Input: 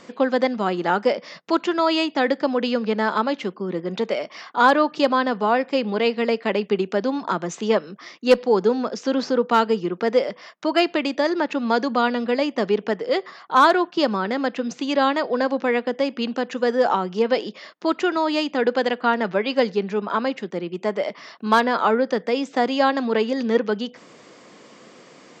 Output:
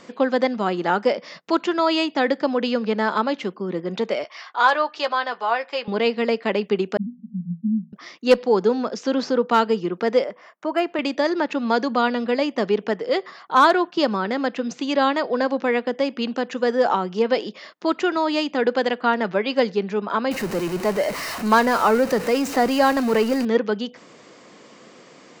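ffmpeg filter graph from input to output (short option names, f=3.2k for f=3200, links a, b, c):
-filter_complex "[0:a]asettb=1/sr,asplit=3[a][b][c];[a]atrim=end=4.244[d];[b]atrim=start=4.24:end=5.88,asetpts=PTS-STARTPTS,afade=t=in:d=0.004:c=qsin,afade=t=out:st=1.636:d=0.004:c=qsin,highpass=720,lowpass=6.6k,asplit=2[e][f];[f]adelay=13,volume=-10dB[g];[e][g]amix=inputs=2:normalize=0,atrim=end_sample=72324[h];[c]atrim=start=5.876[i];[d][h]acrossfade=d=0.004:c1=hsin:c2=qsin[j];[j][i]acrossfade=d=0.004:c1=qsin:c2=hsin,asettb=1/sr,asplit=3[k][l][m];[k]atrim=end=6.974[n];[l]atrim=start=6.97:end=7.93,asetpts=PTS-STARTPTS,afade=t=in:d=0.004:c=qsin,afade=t=out:st=0.956:d=0.004:c=qsin,acontrast=49,asuperpass=centerf=200:order=20:qfactor=2.6[o];[m]atrim=start=7.926[p];[n][o]acrossfade=d=0.004:c1=hsin:c2=qsin[q];[q][p]acrossfade=d=0.004:c1=qsin:c2=hsin,asettb=1/sr,asplit=3[r][s][t];[r]atrim=end=10.244[u];[s]atrim=start=10.24:end=10.99,asetpts=PTS-STARTPTS,afade=t=in:d=0.004:c=qsin,afade=t=out:st=0.746:d=0.004:c=qsin,highpass=f=370:p=1,equalizer=f=4.4k:w=0.88:g=-15[v];[t]atrim=start=10.986[w];[u][v]acrossfade=d=0.004:c1=hsin:c2=qsin[x];[x][w]acrossfade=d=0.004:c1=qsin:c2=hsin,asettb=1/sr,asplit=3[y][z][aa];[y]atrim=end=20.314[ab];[z]atrim=start=20.31:end=23.45,asetpts=PTS-STARTPTS,afade=t=in:d=0.004:c=qsin,afade=t=out:st=3.136:d=0.004:c=qsin,aeval=exprs='val(0)+0.5*0.0562*sgn(val(0))':c=same,bandreject=f=3.4k:w=6.6[ac];[aa]atrim=start=23.446[ad];[ab][ac]acrossfade=d=0.004:c1=hsin:c2=qsin[ae];[ae][ad]acrossfade=d=0.004:c1=qsin:c2=hsin"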